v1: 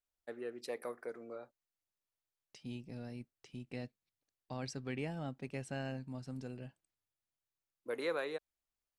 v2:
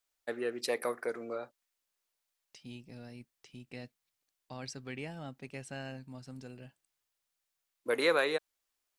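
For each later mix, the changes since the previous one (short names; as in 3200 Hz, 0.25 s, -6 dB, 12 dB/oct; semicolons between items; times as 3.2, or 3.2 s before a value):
first voice +10.0 dB; master: add tilt shelf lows -3 dB, about 1100 Hz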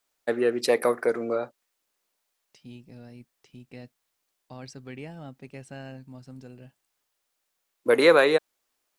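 first voice +9.5 dB; master: add tilt shelf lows +3 dB, about 1100 Hz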